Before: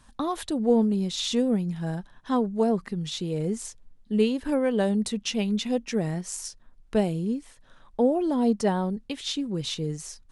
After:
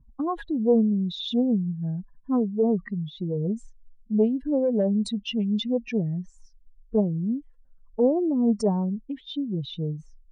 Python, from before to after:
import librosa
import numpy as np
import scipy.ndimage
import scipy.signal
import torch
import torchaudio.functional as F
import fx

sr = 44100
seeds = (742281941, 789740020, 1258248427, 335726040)

y = fx.spec_expand(x, sr, power=2.3)
y = fx.env_lowpass(y, sr, base_hz=490.0, full_db=-21.0)
y = fx.doppler_dist(y, sr, depth_ms=0.15)
y = y * librosa.db_to_amplitude(1.5)